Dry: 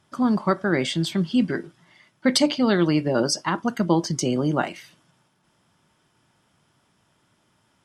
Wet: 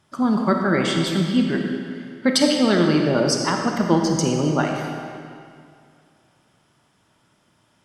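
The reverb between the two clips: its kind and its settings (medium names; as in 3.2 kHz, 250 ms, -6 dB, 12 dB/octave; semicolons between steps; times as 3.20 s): algorithmic reverb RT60 2.3 s, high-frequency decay 0.85×, pre-delay 10 ms, DRR 2 dB; trim +1 dB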